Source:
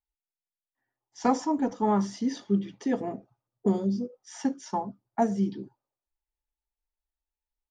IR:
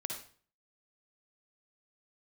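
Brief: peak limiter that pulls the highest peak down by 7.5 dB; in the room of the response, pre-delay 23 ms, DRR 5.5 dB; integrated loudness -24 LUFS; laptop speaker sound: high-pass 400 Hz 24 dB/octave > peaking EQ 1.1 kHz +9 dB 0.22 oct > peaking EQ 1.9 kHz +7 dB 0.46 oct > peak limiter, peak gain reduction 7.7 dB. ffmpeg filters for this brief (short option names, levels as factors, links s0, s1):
-filter_complex "[0:a]alimiter=limit=0.112:level=0:latency=1,asplit=2[s0][s1];[1:a]atrim=start_sample=2205,adelay=23[s2];[s1][s2]afir=irnorm=-1:irlink=0,volume=0.501[s3];[s0][s3]amix=inputs=2:normalize=0,highpass=f=400:w=0.5412,highpass=f=400:w=1.3066,equalizer=f=1100:t=o:w=0.22:g=9,equalizer=f=1900:t=o:w=0.46:g=7,volume=4.47,alimiter=limit=0.266:level=0:latency=1"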